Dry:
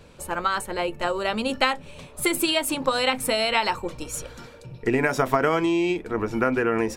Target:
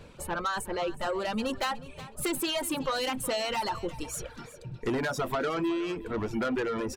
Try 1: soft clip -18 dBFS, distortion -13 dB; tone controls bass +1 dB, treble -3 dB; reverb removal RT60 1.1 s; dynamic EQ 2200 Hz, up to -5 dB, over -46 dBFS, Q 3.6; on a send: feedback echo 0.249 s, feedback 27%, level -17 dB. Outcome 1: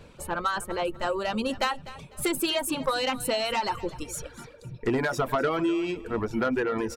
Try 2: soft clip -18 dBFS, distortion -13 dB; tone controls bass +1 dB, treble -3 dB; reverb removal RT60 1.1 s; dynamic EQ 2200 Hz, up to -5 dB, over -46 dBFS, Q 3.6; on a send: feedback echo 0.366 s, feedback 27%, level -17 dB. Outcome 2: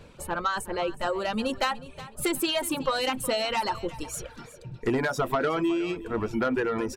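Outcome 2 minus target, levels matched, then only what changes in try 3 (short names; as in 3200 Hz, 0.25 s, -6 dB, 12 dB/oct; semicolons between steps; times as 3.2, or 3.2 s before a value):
soft clip: distortion -5 dB
change: soft clip -24.5 dBFS, distortion -8 dB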